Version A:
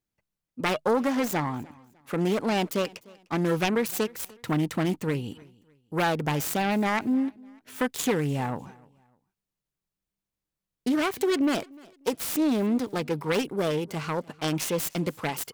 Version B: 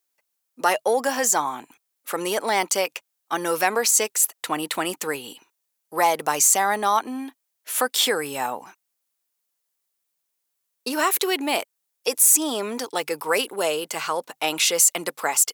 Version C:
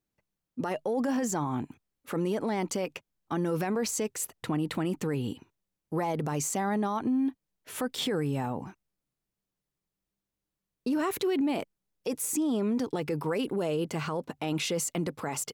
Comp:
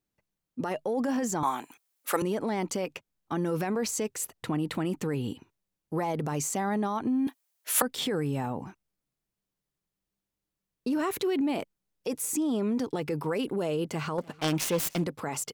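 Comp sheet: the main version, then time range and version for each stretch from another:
C
0:01.43–0:02.22: punch in from B
0:07.27–0:07.82: punch in from B
0:14.18–0:15.04: punch in from A

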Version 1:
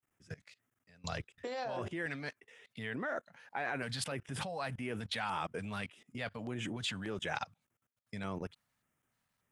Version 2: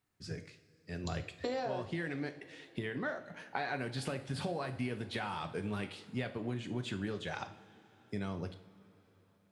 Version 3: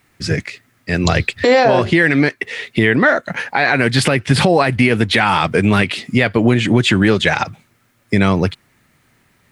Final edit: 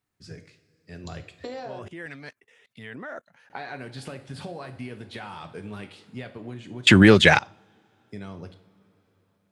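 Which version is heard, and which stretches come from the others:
2
0:01.79–0:03.50: punch in from 1
0:06.87–0:07.39: punch in from 3

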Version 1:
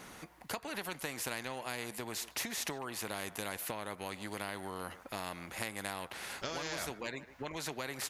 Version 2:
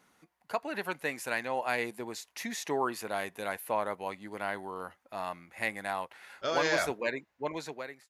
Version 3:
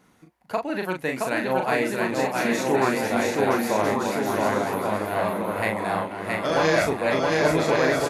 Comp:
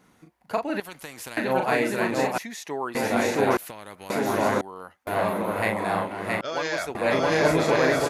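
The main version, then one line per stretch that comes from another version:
3
0:00.80–0:01.37: punch in from 1
0:02.38–0:02.95: punch in from 2
0:03.57–0:04.10: punch in from 1
0:04.61–0:05.07: punch in from 2
0:06.41–0:06.95: punch in from 2

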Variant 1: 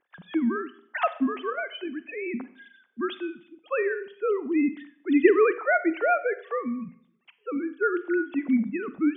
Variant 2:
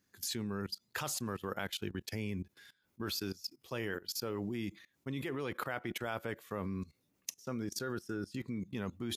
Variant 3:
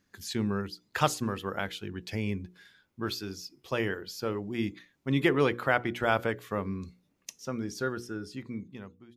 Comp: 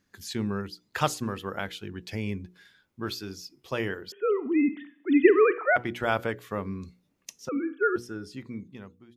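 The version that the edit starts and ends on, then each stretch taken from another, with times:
3
0:04.12–0:05.76: punch in from 1
0:07.49–0:07.96: punch in from 1
not used: 2

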